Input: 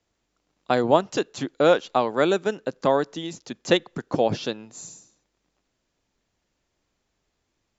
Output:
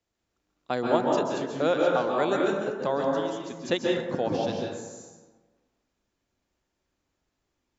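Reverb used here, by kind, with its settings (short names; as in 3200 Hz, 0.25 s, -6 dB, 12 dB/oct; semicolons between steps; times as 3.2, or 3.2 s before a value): plate-style reverb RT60 1.3 s, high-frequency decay 0.4×, pre-delay 0.12 s, DRR -1.5 dB; gain -7.5 dB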